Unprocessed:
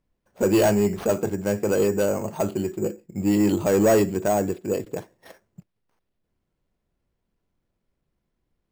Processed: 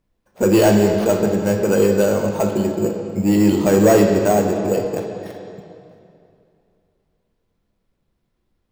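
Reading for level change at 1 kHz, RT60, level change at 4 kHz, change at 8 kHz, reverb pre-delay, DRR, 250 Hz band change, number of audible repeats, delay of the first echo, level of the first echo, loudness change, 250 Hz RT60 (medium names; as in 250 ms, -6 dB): +6.0 dB, 2.6 s, +6.5 dB, +4.5 dB, 7 ms, 3.0 dB, +6.5 dB, no echo, no echo, no echo, +6.0 dB, 2.7 s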